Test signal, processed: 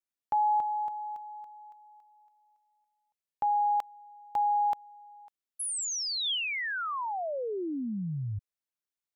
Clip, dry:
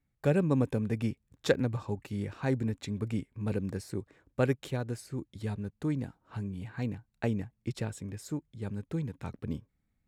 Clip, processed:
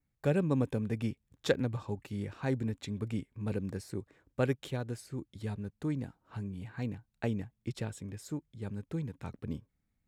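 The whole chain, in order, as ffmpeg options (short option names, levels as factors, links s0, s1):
-af "adynamicequalizer=threshold=0.00178:dfrequency=3300:dqfactor=3.9:tfrequency=3300:tqfactor=3.9:attack=5:release=100:ratio=0.375:range=2:mode=boostabove:tftype=bell,volume=0.75"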